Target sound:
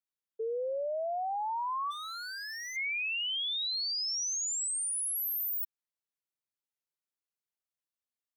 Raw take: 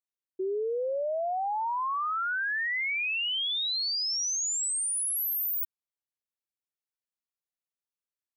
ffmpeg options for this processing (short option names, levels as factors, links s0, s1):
-filter_complex "[0:a]afreqshift=70,asplit=3[s0][s1][s2];[s0]afade=t=out:st=1.9:d=0.02[s3];[s1]aeval=exprs='0.0251*(abs(mod(val(0)/0.0251+3,4)-2)-1)':c=same,afade=t=in:st=1.9:d=0.02,afade=t=out:st=2.75:d=0.02[s4];[s2]afade=t=in:st=2.75:d=0.02[s5];[s3][s4][s5]amix=inputs=3:normalize=0,volume=0.668"